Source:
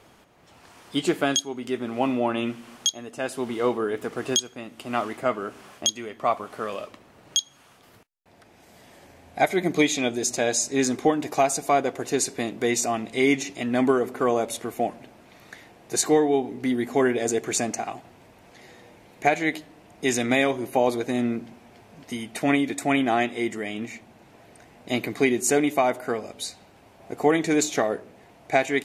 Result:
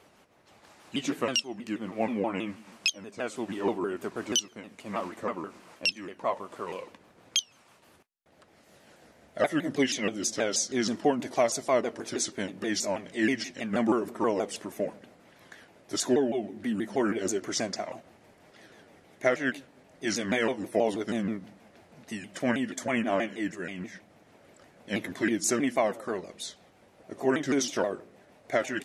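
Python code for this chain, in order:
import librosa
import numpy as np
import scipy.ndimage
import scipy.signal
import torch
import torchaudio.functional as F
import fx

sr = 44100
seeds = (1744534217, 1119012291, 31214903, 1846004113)

y = fx.pitch_ramps(x, sr, semitones=-4.5, every_ms=160)
y = fx.low_shelf(y, sr, hz=89.0, db=-10.0)
y = F.gain(torch.from_numpy(y), -3.5).numpy()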